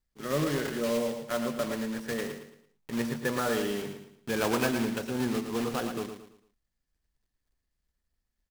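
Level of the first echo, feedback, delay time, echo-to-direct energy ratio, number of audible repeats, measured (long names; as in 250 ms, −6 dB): −8.0 dB, 36%, 112 ms, −7.5 dB, 4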